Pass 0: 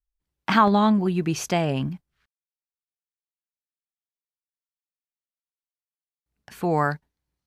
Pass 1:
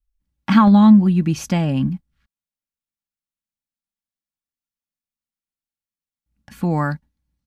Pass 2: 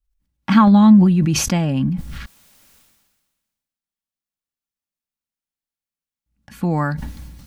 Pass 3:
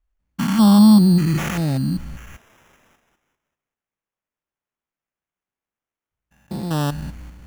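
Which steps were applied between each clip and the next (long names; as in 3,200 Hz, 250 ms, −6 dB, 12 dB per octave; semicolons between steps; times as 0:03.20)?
low shelf with overshoot 280 Hz +9.5 dB, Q 1.5; comb filter 3.6 ms, depth 41%; level −1 dB
level that may fall only so fast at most 39 dB per second
spectrum averaged block by block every 200 ms; decimation without filtering 10×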